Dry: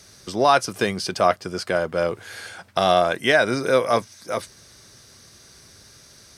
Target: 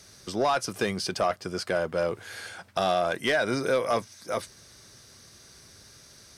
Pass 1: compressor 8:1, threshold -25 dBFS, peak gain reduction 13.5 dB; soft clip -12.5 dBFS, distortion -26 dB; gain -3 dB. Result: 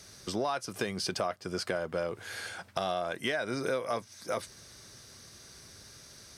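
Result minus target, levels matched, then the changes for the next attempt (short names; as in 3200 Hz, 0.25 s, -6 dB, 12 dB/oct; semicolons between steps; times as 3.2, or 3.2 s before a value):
compressor: peak gain reduction +9 dB
change: compressor 8:1, threshold -14.5 dBFS, peak gain reduction 4.5 dB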